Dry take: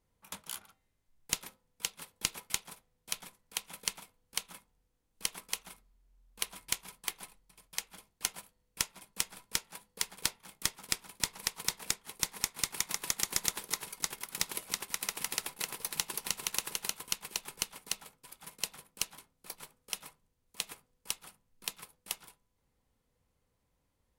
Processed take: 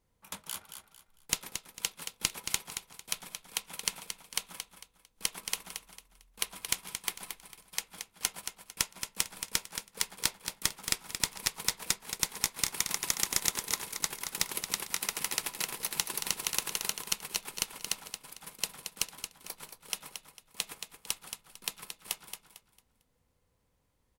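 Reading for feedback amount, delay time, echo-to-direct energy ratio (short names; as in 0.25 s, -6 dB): 30%, 0.225 s, -7.5 dB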